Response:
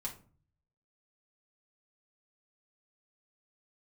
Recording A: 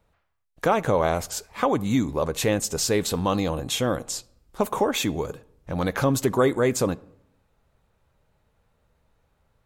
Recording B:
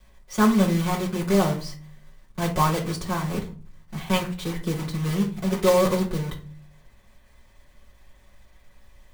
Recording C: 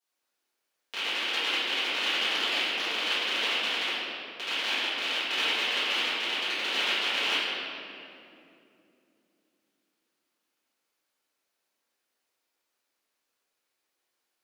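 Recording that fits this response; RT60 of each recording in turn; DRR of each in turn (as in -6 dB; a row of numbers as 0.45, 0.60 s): B; 0.80, 0.40, 2.7 s; 17.5, -3.5, -16.0 dB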